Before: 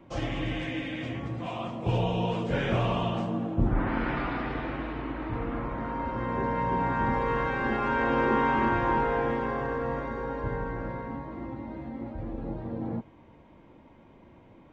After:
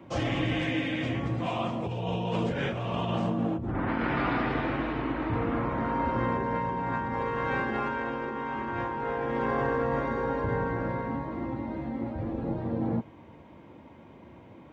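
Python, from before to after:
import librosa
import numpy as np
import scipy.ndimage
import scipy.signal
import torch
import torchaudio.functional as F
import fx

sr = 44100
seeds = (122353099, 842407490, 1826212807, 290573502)

y = scipy.signal.sosfilt(scipy.signal.butter(4, 61.0, 'highpass', fs=sr, output='sos'), x)
y = fx.over_compress(y, sr, threshold_db=-31.0, ratio=-1.0)
y = y * 10.0 ** (2.0 / 20.0)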